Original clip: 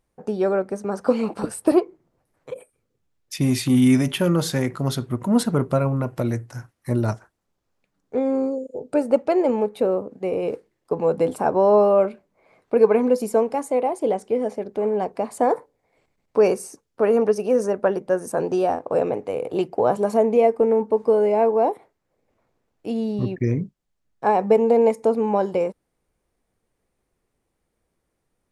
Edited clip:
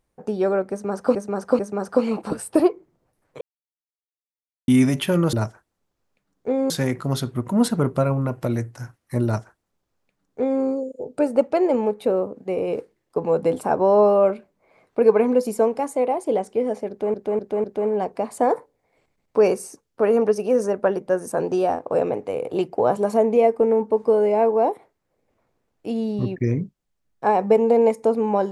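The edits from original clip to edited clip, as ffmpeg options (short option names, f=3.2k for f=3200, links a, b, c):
-filter_complex "[0:a]asplit=10[a][b][c][d][e][f][g][h][i][j];[a]atrim=end=1.152[k];[b]atrim=start=0.708:end=1.152[l];[c]atrim=start=0.708:end=2.53,asetpts=PTS-STARTPTS,afade=t=out:st=1.818:d=0.004:c=hsin[m];[d]atrim=start=2.53:end=3.8,asetpts=PTS-STARTPTS,volume=0[n];[e]atrim=start=3.8:end=4.452,asetpts=PTS-STARTPTS,afade=t=in:d=0.004:c=hsin[o];[f]atrim=start=6.998:end=8.372[p];[g]atrim=start=4.448:end=14.892[q];[h]atrim=start=14.638:end=14.892[r];[i]atrim=start=14.638:end=14.892[s];[j]atrim=start=14.638[t];[k][l]acrossfade=d=0.004:c1=hsin:c2=hsin[u];[m][n][o]concat=n=3:v=0:a=1[v];[u][v]acrossfade=d=0.004:c1=hsin:c2=hsin[w];[w][p]acrossfade=d=0.004:c1=hsin:c2=hsin[x];[x][q]acrossfade=d=0.004:c1=hsin:c2=hsin[y];[y][r]acrossfade=d=0.004:c1=hsin:c2=hsin[z];[z][s]acrossfade=d=0.004:c1=hsin:c2=hsin[aa];[aa][t]acrossfade=d=0.004:c1=hsin:c2=hsin"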